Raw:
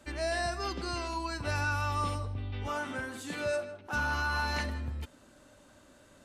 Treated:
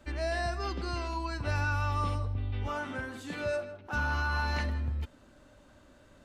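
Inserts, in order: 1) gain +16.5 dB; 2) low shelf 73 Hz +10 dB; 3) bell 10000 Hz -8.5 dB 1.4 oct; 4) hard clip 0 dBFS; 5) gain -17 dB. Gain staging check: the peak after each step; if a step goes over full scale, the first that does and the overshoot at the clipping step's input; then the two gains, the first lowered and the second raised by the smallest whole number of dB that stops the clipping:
-5.5, -3.0, -3.5, -3.5, -20.5 dBFS; no overload

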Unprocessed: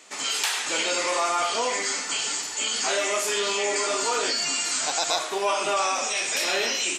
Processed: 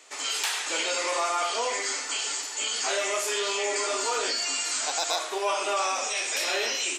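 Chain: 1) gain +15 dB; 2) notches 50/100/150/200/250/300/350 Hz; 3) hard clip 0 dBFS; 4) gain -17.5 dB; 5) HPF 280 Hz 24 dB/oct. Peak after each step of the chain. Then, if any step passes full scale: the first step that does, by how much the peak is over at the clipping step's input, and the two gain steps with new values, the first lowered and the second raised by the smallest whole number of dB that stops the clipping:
+5.5, +5.5, 0.0, -17.5, -13.5 dBFS; step 1, 5.5 dB; step 1 +9 dB, step 4 -11.5 dB

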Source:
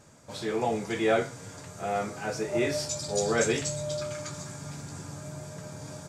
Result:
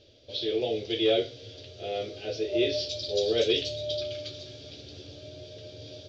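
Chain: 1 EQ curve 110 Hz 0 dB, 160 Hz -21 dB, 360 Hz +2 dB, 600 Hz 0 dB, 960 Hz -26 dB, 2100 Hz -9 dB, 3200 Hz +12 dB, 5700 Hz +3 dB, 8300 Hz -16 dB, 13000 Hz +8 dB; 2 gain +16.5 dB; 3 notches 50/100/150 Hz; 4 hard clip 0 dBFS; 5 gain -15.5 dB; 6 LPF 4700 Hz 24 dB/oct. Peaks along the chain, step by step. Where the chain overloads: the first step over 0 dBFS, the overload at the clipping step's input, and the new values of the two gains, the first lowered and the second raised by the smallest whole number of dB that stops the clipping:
-13.5, +3.0, +3.0, 0.0, -15.5, -15.0 dBFS; step 2, 3.0 dB; step 2 +13.5 dB, step 5 -12.5 dB

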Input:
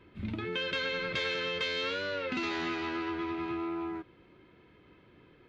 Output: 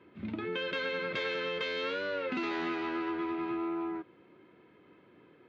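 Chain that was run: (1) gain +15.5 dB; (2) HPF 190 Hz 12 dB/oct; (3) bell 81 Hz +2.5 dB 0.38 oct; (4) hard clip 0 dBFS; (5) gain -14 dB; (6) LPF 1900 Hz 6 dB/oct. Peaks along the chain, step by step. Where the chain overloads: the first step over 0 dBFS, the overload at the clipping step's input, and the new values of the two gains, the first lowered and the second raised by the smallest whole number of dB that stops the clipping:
-6.0, -5.5, -5.5, -5.5, -19.5, -22.0 dBFS; no overload

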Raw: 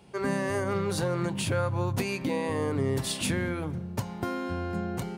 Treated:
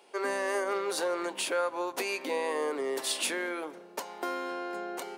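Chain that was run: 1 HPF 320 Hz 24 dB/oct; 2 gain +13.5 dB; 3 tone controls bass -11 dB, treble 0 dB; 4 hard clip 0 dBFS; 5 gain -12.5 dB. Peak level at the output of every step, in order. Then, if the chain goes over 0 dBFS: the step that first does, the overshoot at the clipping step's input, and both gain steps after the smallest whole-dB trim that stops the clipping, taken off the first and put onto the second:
-19.0, -5.5, -5.5, -5.5, -18.0 dBFS; no overload

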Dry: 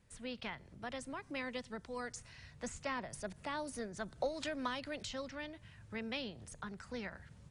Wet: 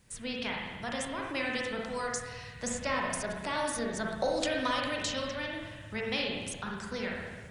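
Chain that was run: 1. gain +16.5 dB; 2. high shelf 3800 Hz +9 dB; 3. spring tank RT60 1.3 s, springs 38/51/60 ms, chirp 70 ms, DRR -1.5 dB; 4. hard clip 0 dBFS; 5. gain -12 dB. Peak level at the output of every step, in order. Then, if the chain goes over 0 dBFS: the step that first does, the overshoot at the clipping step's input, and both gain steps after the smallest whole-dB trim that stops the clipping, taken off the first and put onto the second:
-7.0, -5.0, -6.0, -6.0, -18.0 dBFS; no overload

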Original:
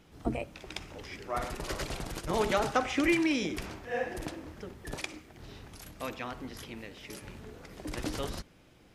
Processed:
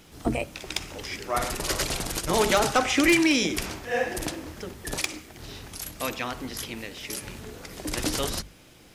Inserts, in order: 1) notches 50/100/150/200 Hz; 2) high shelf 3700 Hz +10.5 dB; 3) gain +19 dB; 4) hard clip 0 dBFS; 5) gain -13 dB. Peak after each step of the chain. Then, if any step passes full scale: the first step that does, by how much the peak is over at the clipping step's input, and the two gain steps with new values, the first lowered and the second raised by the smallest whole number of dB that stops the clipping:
-13.5, -12.0, +7.0, 0.0, -13.0 dBFS; step 3, 7.0 dB; step 3 +12 dB, step 5 -6 dB

